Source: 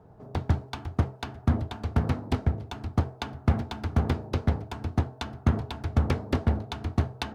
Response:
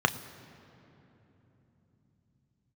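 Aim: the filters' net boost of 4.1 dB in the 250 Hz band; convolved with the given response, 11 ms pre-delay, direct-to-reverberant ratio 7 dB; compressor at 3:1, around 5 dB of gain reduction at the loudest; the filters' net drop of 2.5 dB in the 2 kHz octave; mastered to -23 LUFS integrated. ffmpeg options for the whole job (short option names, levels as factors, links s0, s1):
-filter_complex "[0:a]equalizer=f=250:t=o:g=5,equalizer=f=2000:t=o:g=-3.5,acompressor=threshold=0.0708:ratio=3,asplit=2[s0][s1];[1:a]atrim=start_sample=2205,adelay=11[s2];[s1][s2]afir=irnorm=-1:irlink=0,volume=0.1[s3];[s0][s3]amix=inputs=2:normalize=0,volume=2.37"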